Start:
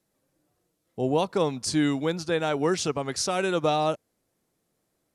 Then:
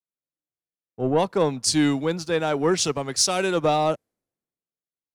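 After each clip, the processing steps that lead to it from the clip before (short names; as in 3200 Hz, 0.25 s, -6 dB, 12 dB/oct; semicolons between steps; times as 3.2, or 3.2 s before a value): sample leveller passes 1; three-band expander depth 70%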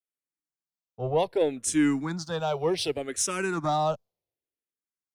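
endless phaser -0.66 Hz; gain -2 dB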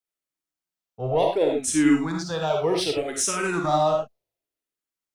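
reverb, pre-delay 10 ms, DRR 0.5 dB; gain +1.5 dB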